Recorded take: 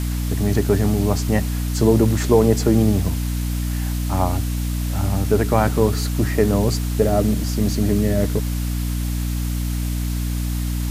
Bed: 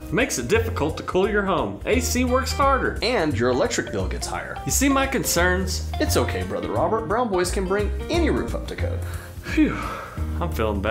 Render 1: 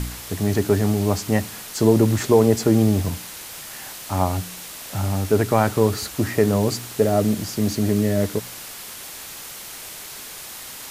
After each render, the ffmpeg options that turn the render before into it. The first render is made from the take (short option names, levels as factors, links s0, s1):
-af "bandreject=f=60:t=h:w=4,bandreject=f=120:t=h:w=4,bandreject=f=180:t=h:w=4,bandreject=f=240:t=h:w=4,bandreject=f=300:t=h:w=4"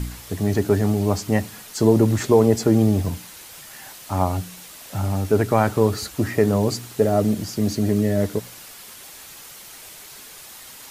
-af "afftdn=nr=6:nf=-37"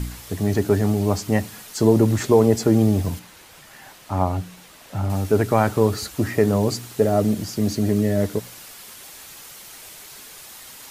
-filter_complex "[0:a]asettb=1/sr,asplit=3[s0][s1][s2];[s0]atrim=end=3.194[s3];[s1]atrim=start=3.19:end=5.1,asetpts=PTS-STARTPTS,afade=t=in:d=0.004:c=qsin,afade=t=out:st=1.906:d=0.004:c=qsin,highshelf=f=4100:g=-10[s4];[s2]atrim=start=5.096[s5];[s3][s4]acrossfade=d=0.004:c1=hsin:c2=qsin[s6];[s6][s5]acrossfade=d=0.004:c1=qsin:c2=hsin"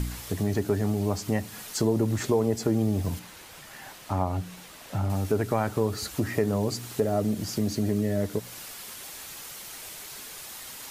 -af "acompressor=threshold=0.0447:ratio=2"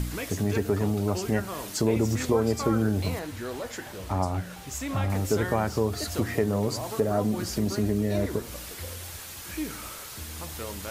-filter_complex "[1:a]volume=0.188[s0];[0:a][s0]amix=inputs=2:normalize=0"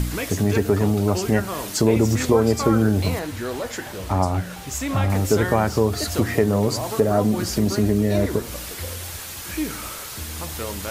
-af "volume=2.11"